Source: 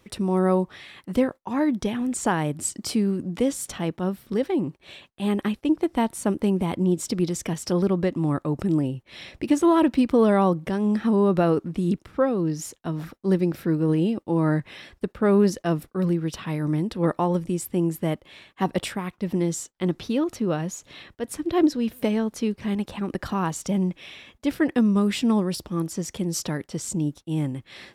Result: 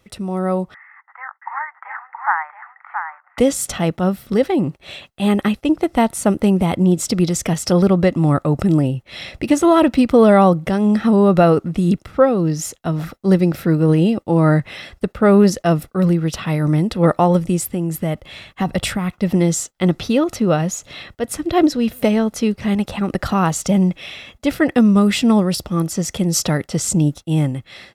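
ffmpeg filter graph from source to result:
-filter_complex "[0:a]asettb=1/sr,asplit=3[a][b][c];[a]atrim=end=0.744[d];[b]atrim=start=0.74:end=3.38,asetpts=PTS-STARTPTS,afade=t=in:d=0.004:c=qsin,afade=t=out:st=2.636:d=0.004:c=qsin,asuperpass=centerf=1300:order=12:qfactor=1.1,aecho=1:1:674:0.531,atrim=end_sample=116424[e];[c]atrim=start=3.376[f];[d][e]acrossfade=d=0.004:c1=hsin:c2=qsin[g];[g][f]acrossfade=d=0.004:c1=qsin:c2=hsin,asettb=1/sr,asplit=3[h][i][j];[h]atrim=end=17.714[k];[i]atrim=start=17.71:end=19.1,asetpts=PTS-STARTPTS,afade=t=in:d=0.004:c=qsin,afade=t=out:st=1.386:d=0.004:c=qsin,asubboost=boost=5:cutoff=220,acompressor=threshold=-27dB:ratio=2.5:attack=3.2:release=140:knee=1:detection=peak[l];[j]atrim=start=19.096[m];[k][l]acrossfade=d=0.004:c1=hsin:c2=qsin[n];[n][m]acrossfade=d=0.004:c1=qsin:c2=hsin,dynaudnorm=f=380:g=5:m=11.5dB,aecho=1:1:1.5:0.34"

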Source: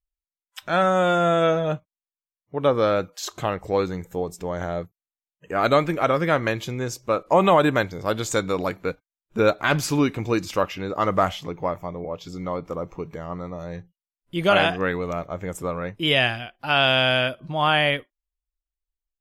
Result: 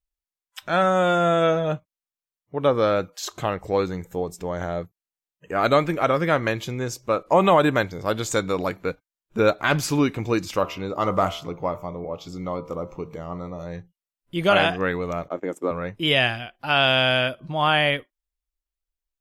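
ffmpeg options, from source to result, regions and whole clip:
-filter_complex "[0:a]asettb=1/sr,asplit=3[a][b][c];[a]atrim=end=10.594[d];[b]atrim=start=10.59:end=13.66,asetpts=PTS-STARTPTS,afade=t=in:d=0.004:c=qsin,afade=t=out:st=3.066:d=0.004:c=qsin,equalizer=f=1.7k:t=o:w=0.34:g=-8,bandreject=f=75.19:t=h:w=4,bandreject=f=150.38:t=h:w=4,bandreject=f=225.57:t=h:w=4,bandreject=f=300.76:t=h:w=4,bandreject=f=375.95:t=h:w=4,bandreject=f=451.14:t=h:w=4,bandreject=f=526.33:t=h:w=4,bandreject=f=601.52:t=h:w=4,bandreject=f=676.71:t=h:w=4,bandreject=f=751.9:t=h:w=4,bandreject=f=827.09:t=h:w=4,bandreject=f=902.28:t=h:w=4,bandreject=f=977.47:t=h:w=4,bandreject=f=1.05266k:t=h:w=4,bandreject=f=1.12785k:t=h:w=4,bandreject=f=1.20304k:t=h:w=4,bandreject=f=1.27823k:t=h:w=4,bandreject=f=1.35342k:t=h:w=4,bandreject=f=1.42861k:t=h:w=4,bandreject=f=1.5038k:t=h:w=4,bandreject=f=1.57899k:t=h:w=4[e];[c]atrim=start=13.656[f];[d][e]acrossfade=d=0.004:c1=hsin:c2=qsin[g];[g][f]acrossfade=d=0.004:c1=qsin:c2=hsin,asettb=1/sr,asplit=3[h][i][j];[h]atrim=end=15.284[k];[i]atrim=start=15.28:end=15.71,asetpts=PTS-STARTPTS,afade=t=in:d=0.004:c=qsin,afade=t=out:st=0.426:d=0.004:c=qsin,agate=range=-19dB:threshold=-36dB:ratio=16:release=100:detection=peak,highpass=f=300:t=q:w=2.9,highshelf=f=5.2k:g=-7[l];[j]atrim=start=15.706[m];[k][l]acrossfade=d=0.004:c1=hsin:c2=qsin[n];[n][m]acrossfade=d=0.004:c1=qsin:c2=hsin"

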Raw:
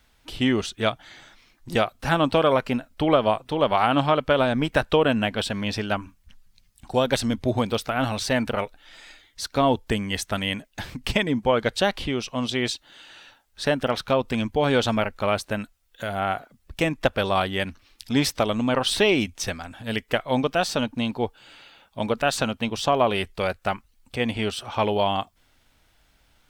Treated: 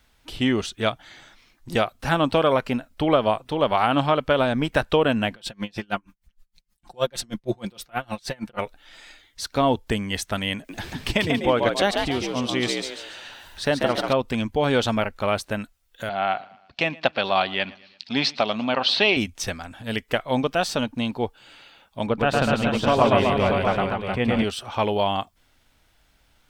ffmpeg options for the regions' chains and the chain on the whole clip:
-filter_complex "[0:a]asettb=1/sr,asplit=3[a][b][c];[a]atrim=end=5.324[d];[b]atrim=start=5.32:end=8.59,asetpts=PTS-STARTPTS,afade=t=in:d=0.004:c=qsin,afade=t=out:st=3.266:d=0.004:c=qsin,aecho=1:1:5.7:0.65,atrim=end_sample=144207,aeval=exprs='val(0)*pow(10,-32*(0.5-0.5*cos(2*PI*6.4*n/s))/20)':c=same[e];[c]atrim=start=8.586[f];[d][e]acrossfade=d=0.004:c1=hsin:c2=qsin[g];[g][f]acrossfade=d=0.004:c1=qsin:c2=hsin,asettb=1/sr,asplit=3[h][i][j];[h]atrim=end=10.554[k];[i]atrim=start=10.55:end=14.13,asetpts=PTS-STARTPTS,afade=t=in:d=0.004:c=qsin,afade=t=out:st=3.576:d=0.004:c=qsin,acompressor=mode=upward:threshold=-33dB:ratio=2.5:attack=3.2:release=140:knee=2.83:detection=peak,asplit=6[l][m][n][o][p][q];[m]adelay=140,afreqshift=66,volume=-4dB[r];[n]adelay=280,afreqshift=132,volume=-12.6dB[s];[o]adelay=420,afreqshift=198,volume=-21.3dB[t];[p]adelay=560,afreqshift=264,volume=-29.9dB[u];[q]adelay=700,afreqshift=330,volume=-38.5dB[v];[l][r][s][t][u][v]amix=inputs=6:normalize=0,atrim=end_sample=157878[w];[j]atrim=start=14.126[x];[k][w]acrossfade=d=0.004:c1=hsin:c2=qsin[y];[y][x]acrossfade=d=0.004:c1=qsin:c2=hsin,asettb=1/sr,asplit=3[z][aa][ab];[z]atrim=end=16.094[ac];[aa]atrim=start=16.09:end=19.17,asetpts=PTS-STARTPTS,afade=t=in:d=0.004:c=qsin,afade=t=out:st=3.076:d=0.004:c=qsin,highpass=200,equalizer=f=320:t=q:w=4:g=-6,equalizer=f=470:t=q:w=4:g=-5,equalizer=f=720:t=q:w=4:g=4,equalizer=f=2.6k:t=q:w=4:g=5,equalizer=f=4.3k:t=q:w=4:g=9,lowpass=f=5.1k:w=0.5412,lowpass=f=5.1k:w=1.3066,aecho=1:1:114|228|342:0.0794|0.0397|0.0199,atrim=end_sample=135828[ad];[ab]atrim=start=19.166[ae];[ac][ad]acrossfade=d=0.004:c1=hsin:c2=qsin[af];[af][ae]acrossfade=d=0.004:c1=qsin:c2=hsin,asettb=1/sr,asplit=3[ag][ah][ai];[ag]atrim=end=22.074[aj];[ah]atrim=start=22.07:end=24.44,asetpts=PTS-STARTPTS,afade=t=in:d=0.004:c=qsin,afade=t=out:st=2.366:d=0.004:c=qsin,bass=f=250:g=4,treble=f=4k:g=-11,aecho=1:1:110|247.5|419.4|634.2|902.8:0.794|0.631|0.501|0.398|0.316,atrim=end_sample=104517[ak];[ai]atrim=start=24.436[al];[aj][ak]acrossfade=d=0.004:c1=hsin:c2=qsin[am];[am][al]acrossfade=d=0.004:c1=qsin:c2=hsin"

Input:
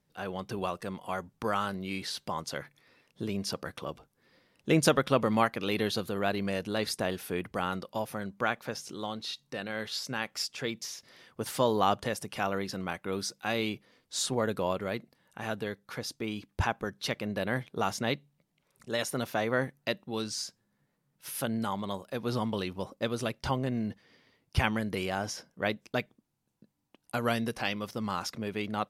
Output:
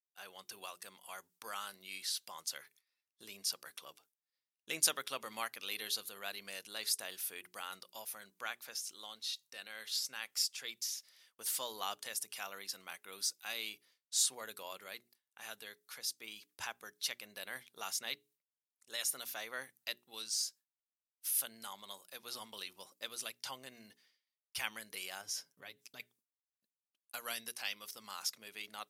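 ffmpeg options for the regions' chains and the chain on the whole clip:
-filter_complex "[0:a]asettb=1/sr,asplit=3[a][b][c];[a]atrim=end=25.214[d];[b]atrim=start=25.21:end=26,asetpts=PTS-STARTPTS,afade=t=in:d=0.004:c=qsin,afade=t=out:st=0.786:d=0.004:c=qsin,equalizer=f=85:w=0.36:g=13.5,aecho=1:1:7.1:0.48,atrim=end_sample=34839,acompressor=threshold=-33dB:ratio=4:attack=3.2:release=140:knee=1:detection=peak[e];[c]atrim=start=25.996[f];[d][e]acrossfade=d=0.004:c1=hsin:c2=qsin[g];[g][f]acrossfade=d=0.004:c1=qsin:c2=hsin,bandreject=f=60:t=h:w=6,bandreject=f=120:t=h:w=6,bandreject=f=180:t=h:w=6,bandreject=f=240:t=h:w=6,bandreject=f=300:t=h:w=6,bandreject=f=360:t=h:w=6,bandreject=f=420:t=h:w=6,agate=range=-33dB:threshold=-51dB:ratio=3:detection=peak,aderivative,volume=2.5dB"

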